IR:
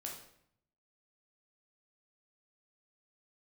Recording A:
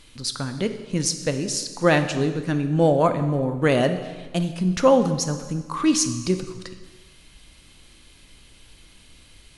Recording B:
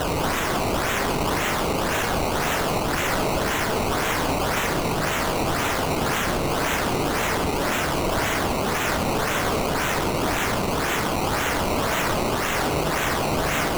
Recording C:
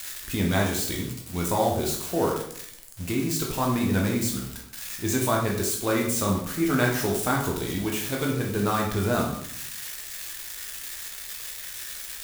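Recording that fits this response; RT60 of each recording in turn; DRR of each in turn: C; 1.4, 0.45, 0.70 seconds; 8.0, 6.0, −1.5 decibels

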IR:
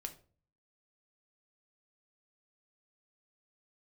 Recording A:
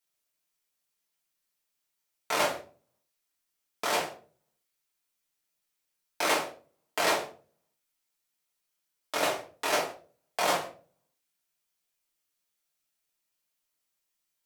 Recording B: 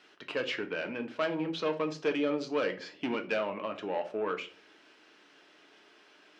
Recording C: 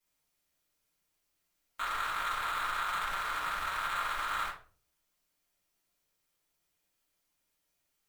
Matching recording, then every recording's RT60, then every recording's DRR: B; 0.40, 0.40, 0.40 seconds; −4.0, 5.5, −11.5 decibels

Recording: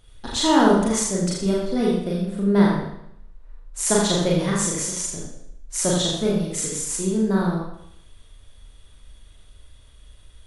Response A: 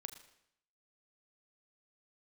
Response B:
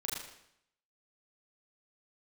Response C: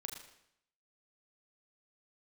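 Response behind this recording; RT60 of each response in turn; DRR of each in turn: B; 0.75, 0.75, 0.75 seconds; 8.0, −4.5, 2.0 decibels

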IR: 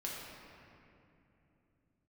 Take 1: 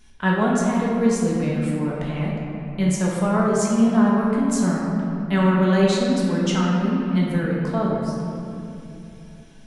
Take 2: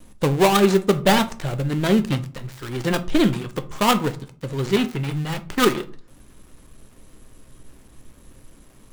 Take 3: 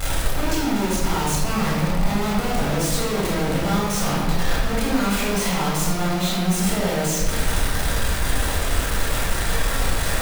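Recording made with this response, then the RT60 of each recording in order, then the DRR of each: 1; 2.8, 0.45, 1.5 seconds; −5.0, 8.5, −5.5 decibels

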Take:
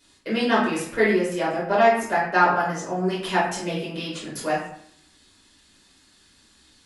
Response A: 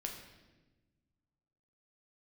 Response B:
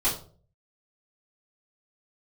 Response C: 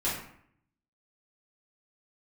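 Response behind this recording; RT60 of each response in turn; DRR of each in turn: C; 1.2, 0.45, 0.65 seconds; 1.0, −11.0, −9.5 decibels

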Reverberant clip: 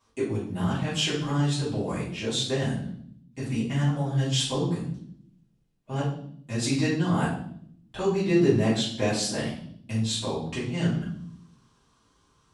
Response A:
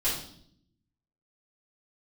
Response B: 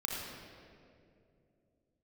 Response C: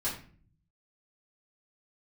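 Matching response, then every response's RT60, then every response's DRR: A; 0.65, 2.5, 0.45 seconds; −11.0, −3.0, −9.5 decibels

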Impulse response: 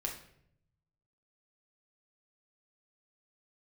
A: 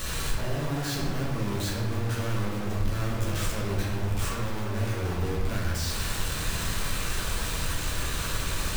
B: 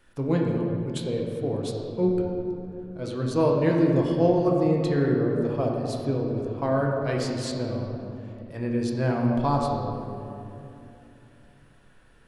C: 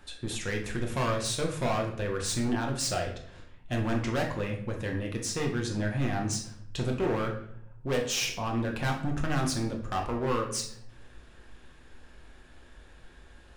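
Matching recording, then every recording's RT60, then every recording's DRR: C; 1.6, 2.9, 0.70 seconds; −6.0, −1.0, 0.5 decibels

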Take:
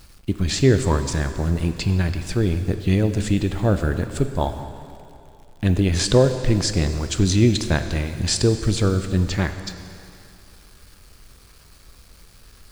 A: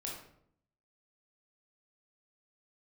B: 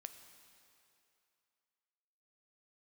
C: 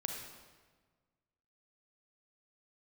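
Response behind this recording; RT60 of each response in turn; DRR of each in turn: B; 0.65, 2.7, 1.5 seconds; −3.0, 8.0, 2.0 decibels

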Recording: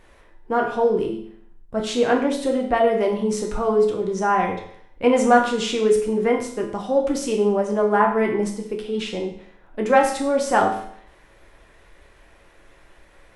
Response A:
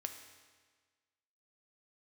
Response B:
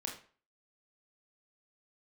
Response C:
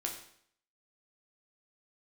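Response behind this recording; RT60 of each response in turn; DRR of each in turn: C; 1.5, 0.40, 0.65 seconds; 5.5, 0.0, 0.5 decibels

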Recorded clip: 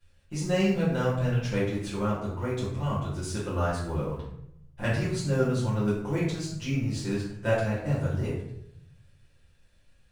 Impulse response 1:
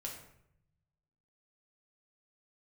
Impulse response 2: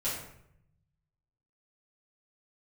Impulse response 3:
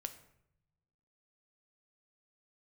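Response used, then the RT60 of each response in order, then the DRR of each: 2; 0.75, 0.75, 0.75 seconds; −1.5, −11.0, 8.0 decibels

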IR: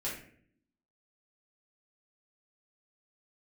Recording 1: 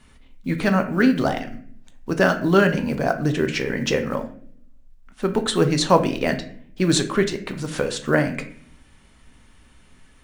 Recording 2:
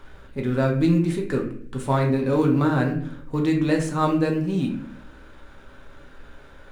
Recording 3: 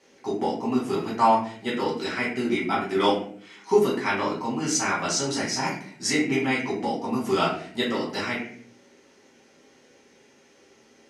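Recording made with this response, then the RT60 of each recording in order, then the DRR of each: 3; 0.55, 0.55, 0.55 seconds; 6.0, 0.5, −7.5 decibels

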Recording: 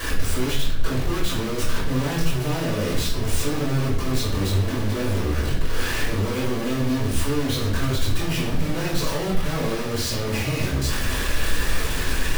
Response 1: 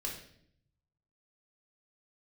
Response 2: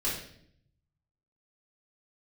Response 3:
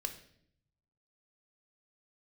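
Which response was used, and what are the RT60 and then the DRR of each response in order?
2; 0.65, 0.65, 0.65 seconds; −2.0, −8.5, 6.0 decibels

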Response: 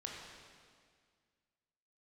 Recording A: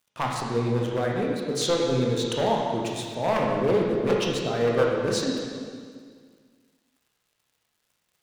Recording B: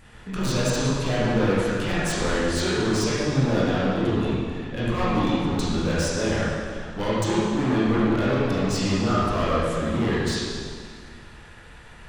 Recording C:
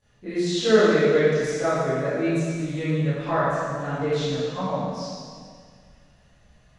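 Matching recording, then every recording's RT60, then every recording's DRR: A; 1.9, 1.9, 1.9 seconds; −2.0, −10.0, −18.5 decibels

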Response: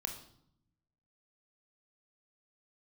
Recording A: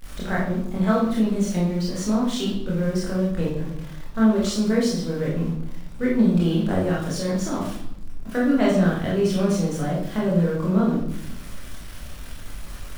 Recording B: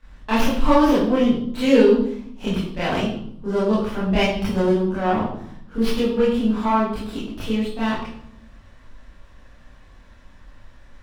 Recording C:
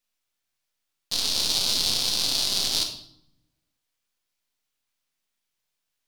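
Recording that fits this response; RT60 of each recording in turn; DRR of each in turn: C; 0.70, 0.70, 0.70 seconds; −6.0, −12.0, 3.5 decibels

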